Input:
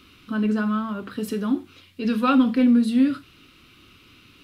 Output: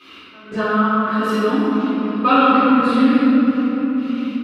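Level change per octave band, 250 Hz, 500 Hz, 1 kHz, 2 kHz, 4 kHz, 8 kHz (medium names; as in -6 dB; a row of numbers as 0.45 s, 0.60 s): +5.0 dB, +10.0 dB, +13.0 dB, +10.5 dB, +8.0 dB, no reading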